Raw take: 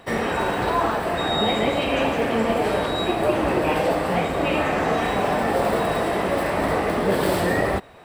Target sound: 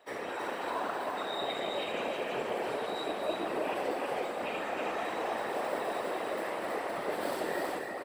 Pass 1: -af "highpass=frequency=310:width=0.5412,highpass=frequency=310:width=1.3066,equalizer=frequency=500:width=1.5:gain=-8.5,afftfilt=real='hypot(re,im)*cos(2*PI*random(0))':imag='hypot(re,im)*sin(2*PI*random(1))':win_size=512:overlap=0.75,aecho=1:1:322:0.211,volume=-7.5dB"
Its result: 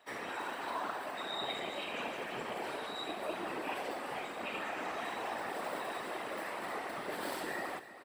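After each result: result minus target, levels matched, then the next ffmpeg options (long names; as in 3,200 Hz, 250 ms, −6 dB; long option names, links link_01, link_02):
echo-to-direct −10.5 dB; 500 Hz band −3.0 dB
-af "highpass=frequency=310:width=0.5412,highpass=frequency=310:width=1.3066,equalizer=frequency=500:width=1.5:gain=-8.5,afftfilt=real='hypot(re,im)*cos(2*PI*random(0))':imag='hypot(re,im)*sin(2*PI*random(1))':win_size=512:overlap=0.75,aecho=1:1:322:0.708,volume=-7.5dB"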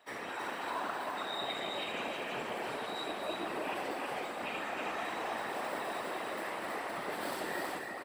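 500 Hz band −3.0 dB
-af "highpass=frequency=310:width=0.5412,highpass=frequency=310:width=1.3066,afftfilt=real='hypot(re,im)*cos(2*PI*random(0))':imag='hypot(re,im)*sin(2*PI*random(1))':win_size=512:overlap=0.75,aecho=1:1:322:0.708,volume=-7.5dB"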